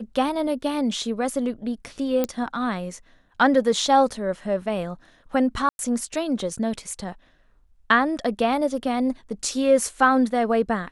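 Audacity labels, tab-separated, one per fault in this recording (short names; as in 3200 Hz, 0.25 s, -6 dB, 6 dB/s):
2.240000	2.240000	pop -10 dBFS
5.690000	5.790000	gap 0.101 s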